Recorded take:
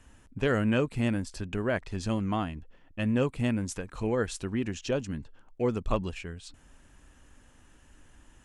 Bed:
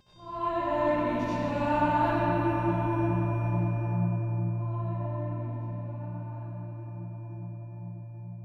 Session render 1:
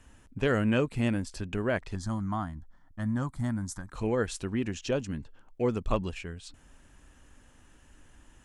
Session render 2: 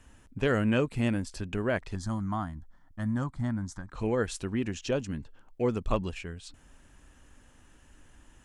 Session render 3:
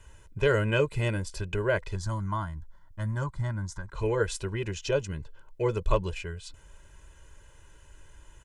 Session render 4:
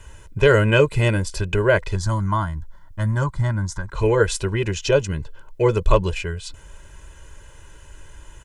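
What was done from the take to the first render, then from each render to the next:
0:01.95–0:03.92: phaser with its sweep stopped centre 1,100 Hz, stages 4
0:03.24–0:04.00: high-frequency loss of the air 77 metres
notch filter 500 Hz, Q 15; comb filter 2 ms, depth 91%
level +9.5 dB; brickwall limiter −3 dBFS, peak gain reduction 1.5 dB

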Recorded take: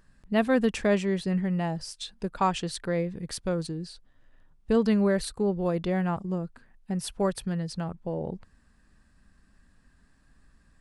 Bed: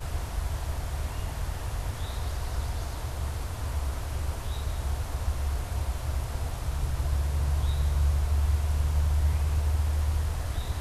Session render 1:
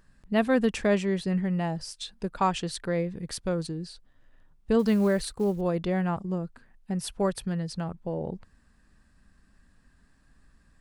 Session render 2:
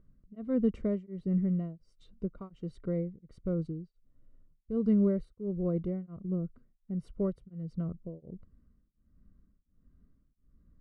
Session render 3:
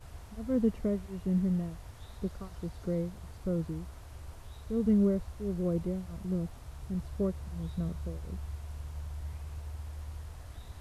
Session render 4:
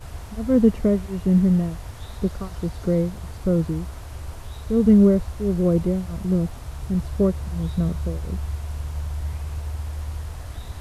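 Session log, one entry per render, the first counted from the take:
0:04.79–0:05.61: floating-point word with a short mantissa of 4 bits
moving average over 52 samples; tremolo along a rectified sine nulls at 1.4 Hz
mix in bed −15 dB
level +11.5 dB

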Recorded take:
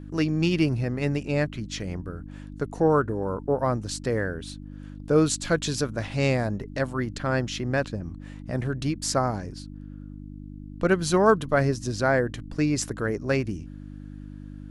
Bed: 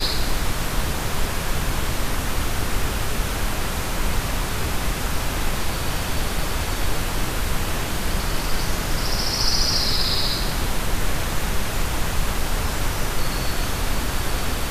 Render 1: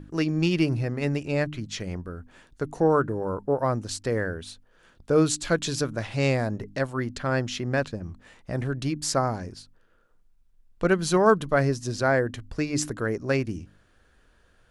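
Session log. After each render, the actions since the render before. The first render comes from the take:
hum removal 50 Hz, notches 6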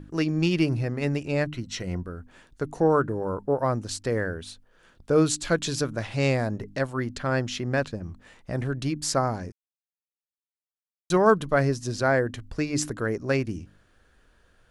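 0:01.52–0:02.03: EQ curve with evenly spaced ripples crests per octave 2, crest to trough 7 dB
0:09.52–0:11.10: silence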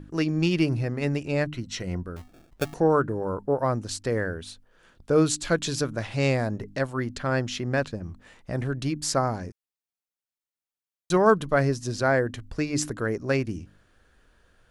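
0:02.16–0:02.74: sample-rate reduction 1,000 Hz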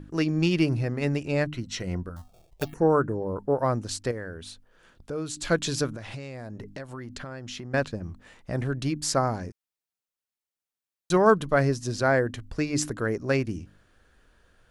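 0:02.09–0:03.36: phaser swept by the level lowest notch 220 Hz, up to 3,800 Hz, full sweep at −20.5 dBFS
0:04.11–0:05.37: downward compressor 2 to 1, threshold −38 dBFS
0:05.96–0:07.74: downward compressor 20 to 1, threshold −33 dBFS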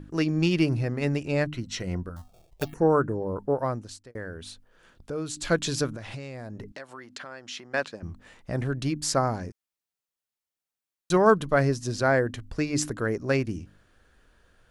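0:03.45–0:04.15: fade out
0:06.72–0:08.03: meter weighting curve A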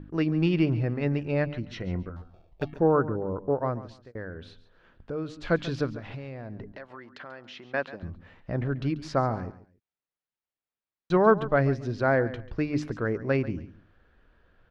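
high-frequency loss of the air 290 metres
repeating echo 139 ms, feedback 24%, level −16 dB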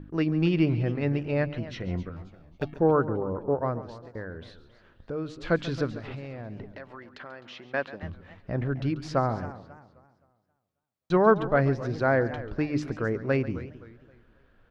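feedback echo with a swinging delay time 265 ms, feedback 35%, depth 216 cents, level −16 dB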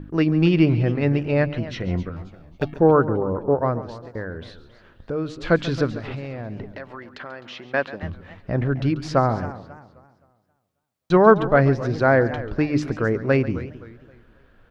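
level +6.5 dB

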